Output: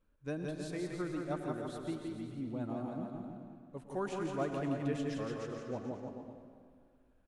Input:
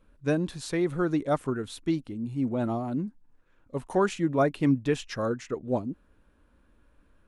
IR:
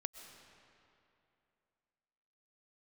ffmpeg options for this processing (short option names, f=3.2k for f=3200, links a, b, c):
-filter_complex "[0:a]aecho=1:1:170|314.5|437.3|541.7|630.5:0.631|0.398|0.251|0.158|0.1[a];[1:a]atrim=start_sample=2205,asetrate=57330,aresample=44100[b];[a][b]afir=irnorm=-1:irlink=0,volume=-8dB"